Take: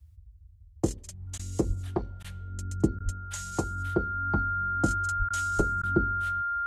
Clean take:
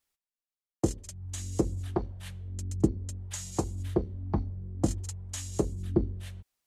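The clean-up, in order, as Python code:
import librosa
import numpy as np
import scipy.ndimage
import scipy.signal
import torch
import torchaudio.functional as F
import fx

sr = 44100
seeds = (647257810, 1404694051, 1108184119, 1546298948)

y = fx.notch(x, sr, hz=1400.0, q=30.0)
y = fx.fix_deplosive(y, sr, at_s=(1.67, 3.04, 5.18, 5.57))
y = fx.fix_interpolate(y, sr, at_s=(1.38, 2.23, 2.99, 5.29, 5.82), length_ms=12.0)
y = fx.noise_reduce(y, sr, print_start_s=0.32, print_end_s=0.82, reduce_db=30.0)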